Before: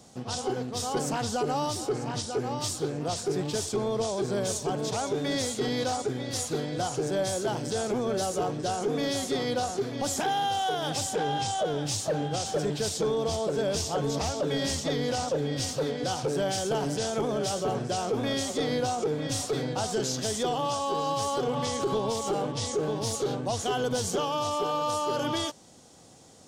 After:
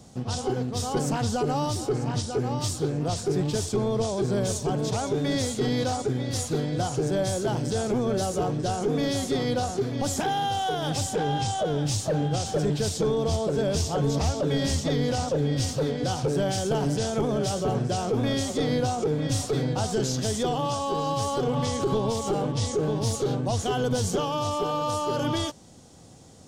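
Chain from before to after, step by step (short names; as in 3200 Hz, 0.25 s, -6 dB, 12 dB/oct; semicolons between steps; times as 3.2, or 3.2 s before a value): low shelf 200 Hz +11.5 dB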